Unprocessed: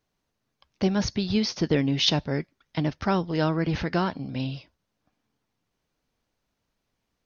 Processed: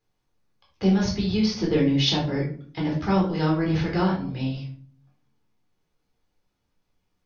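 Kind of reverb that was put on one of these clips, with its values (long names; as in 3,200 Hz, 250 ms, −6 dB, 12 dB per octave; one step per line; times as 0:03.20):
rectangular room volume 440 cubic metres, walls furnished, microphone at 4 metres
level −6 dB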